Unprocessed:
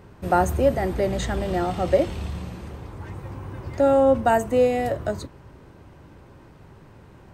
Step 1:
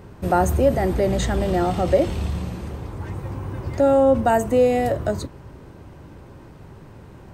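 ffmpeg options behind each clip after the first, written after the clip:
-filter_complex "[0:a]equalizer=f=2k:t=o:w=2.9:g=-3,asplit=2[a][b];[b]alimiter=limit=-19.5dB:level=0:latency=1,volume=-1dB[c];[a][c]amix=inputs=2:normalize=0"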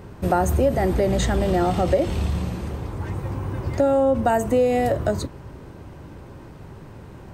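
-af "acompressor=threshold=-18dB:ratio=3,volume=2dB"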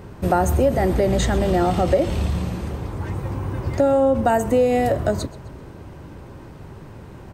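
-af "aecho=1:1:129|258|387:0.1|0.042|0.0176,volume=1.5dB"

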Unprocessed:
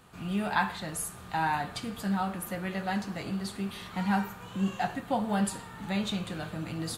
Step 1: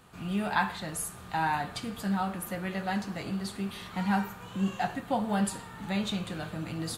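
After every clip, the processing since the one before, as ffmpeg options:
-af anull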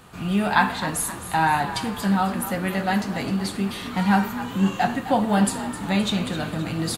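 -filter_complex "[0:a]asplit=6[a][b][c][d][e][f];[b]adelay=260,afreqshift=43,volume=-12.5dB[g];[c]adelay=520,afreqshift=86,volume=-19.2dB[h];[d]adelay=780,afreqshift=129,volume=-26dB[i];[e]adelay=1040,afreqshift=172,volume=-32.7dB[j];[f]adelay=1300,afreqshift=215,volume=-39.5dB[k];[a][g][h][i][j][k]amix=inputs=6:normalize=0,volume=8.5dB"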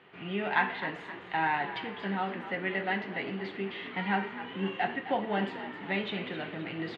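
-af "highpass=200,equalizer=f=230:t=q:w=4:g=-5,equalizer=f=390:t=q:w=4:g=8,equalizer=f=1.2k:t=q:w=4:g=-4,equalizer=f=2k:t=q:w=4:g=10,equalizer=f=3k:t=q:w=4:g=6,lowpass=f=3.2k:w=0.5412,lowpass=f=3.2k:w=1.3066,volume=-9dB"

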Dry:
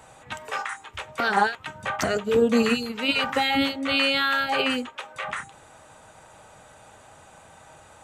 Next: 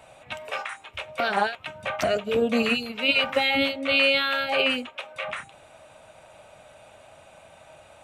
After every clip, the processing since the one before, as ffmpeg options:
-af "superequalizer=8b=2.51:12b=2.24:13b=1.58:15b=0.631,volume=-3.5dB"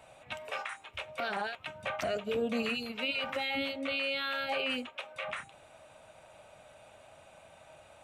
-af "alimiter=limit=-18.5dB:level=0:latency=1:release=94,volume=-5.5dB"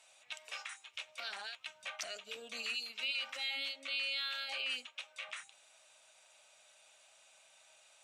-af "bandpass=f=6k:t=q:w=1.4:csg=0,volume=6dB"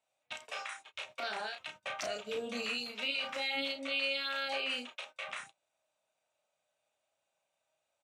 -filter_complex "[0:a]tiltshelf=f=970:g=9,asplit=2[a][b];[b]adelay=33,volume=-4.5dB[c];[a][c]amix=inputs=2:normalize=0,agate=range=-24dB:threshold=-57dB:ratio=16:detection=peak,volume=7.5dB"

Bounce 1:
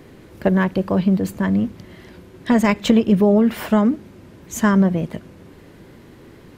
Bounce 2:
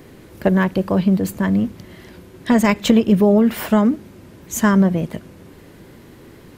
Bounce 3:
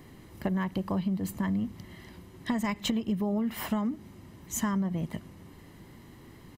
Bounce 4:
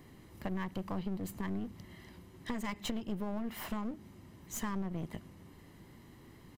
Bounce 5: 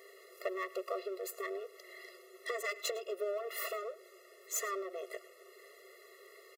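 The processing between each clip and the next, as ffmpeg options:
-af "highshelf=f=7.6k:g=7,volume=1dB"
-af "aecho=1:1:1:0.45,acompressor=threshold=-18dB:ratio=6,volume=-8.5dB"
-af "aeval=exprs='clip(val(0),-1,0.0119)':c=same,volume=-5dB"
-af "aecho=1:1:107:0.1,afftfilt=real='re*eq(mod(floor(b*sr/1024/360),2),1)':imag='im*eq(mod(floor(b*sr/1024/360),2),1)':win_size=1024:overlap=0.75,volume=8dB"

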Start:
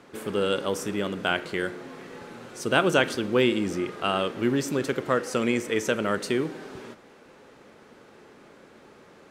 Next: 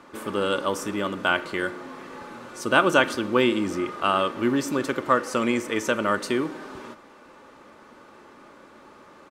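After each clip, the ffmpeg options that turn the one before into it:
-af "equalizer=f=1.1k:w=2.3:g=8.5,aecho=1:1:3.4:0.34"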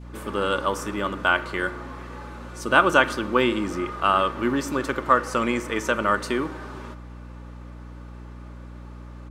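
-af "adynamicequalizer=threshold=0.0178:dfrequency=1200:dqfactor=0.97:tfrequency=1200:tqfactor=0.97:attack=5:release=100:ratio=0.375:range=2.5:mode=boostabove:tftype=bell,aeval=exprs='val(0)+0.0141*(sin(2*PI*60*n/s)+sin(2*PI*2*60*n/s)/2+sin(2*PI*3*60*n/s)/3+sin(2*PI*4*60*n/s)/4+sin(2*PI*5*60*n/s)/5)':c=same,volume=-1.5dB"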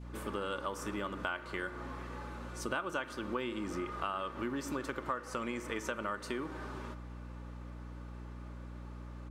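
-af "acompressor=threshold=-28dB:ratio=5,volume=-6dB"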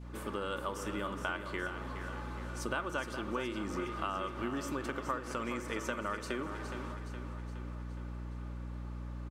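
-af "aecho=1:1:417|834|1251|1668|2085|2502:0.355|0.195|0.107|0.059|0.0325|0.0179"

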